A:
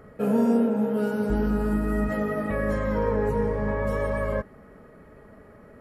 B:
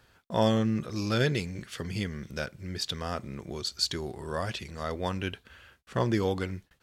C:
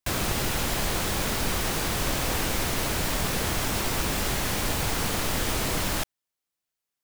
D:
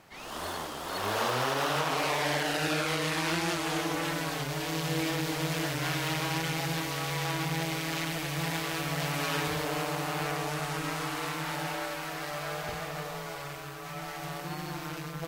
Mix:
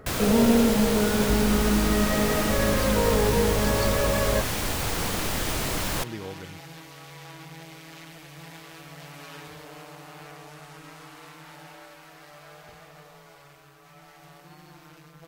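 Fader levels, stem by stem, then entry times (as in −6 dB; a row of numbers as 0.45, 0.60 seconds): +1.5, −10.0, −1.0, −12.0 decibels; 0.00, 0.00, 0.00, 0.00 seconds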